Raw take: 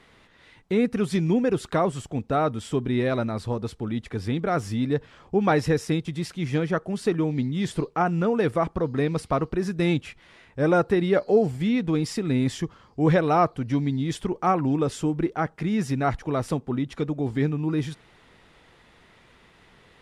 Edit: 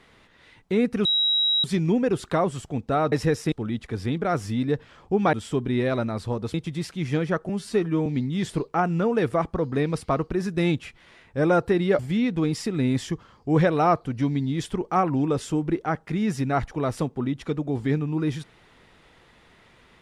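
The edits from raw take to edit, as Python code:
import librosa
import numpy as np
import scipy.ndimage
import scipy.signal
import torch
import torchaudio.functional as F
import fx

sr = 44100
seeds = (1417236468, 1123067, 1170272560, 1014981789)

y = fx.edit(x, sr, fx.insert_tone(at_s=1.05, length_s=0.59, hz=3850.0, db=-18.5),
    fx.swap(start_s=2.53, length_s=1.21, other_s=5.55, other_length_s=0.4),
    fx.stretch_span(start_s=6.9, length_s=0.38, factor=1.5),
    fx.cut(start_s=11.21, length_s=0.29), tone=tone)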